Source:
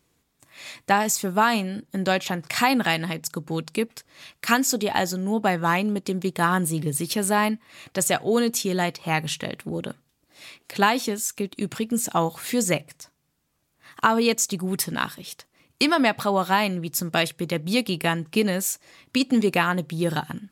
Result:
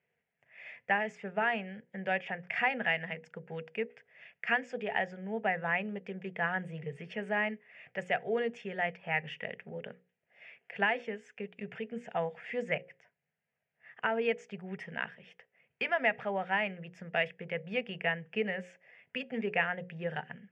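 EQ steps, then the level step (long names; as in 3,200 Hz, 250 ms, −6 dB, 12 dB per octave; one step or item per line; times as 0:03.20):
loudspeaker in its box 280–2,700 Hz, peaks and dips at 340 Hz −9 dB, 580 Hz −8 dB, 840 Hz −9 dB, 1,400 Hz −9 dB, 2,400 Hz −4 dB
mains-hum notches 60/120/180/240/300/360/420/480/540 Hz
phaser with its sweep stopped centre 1,100 Hz, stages 6
0.0 dB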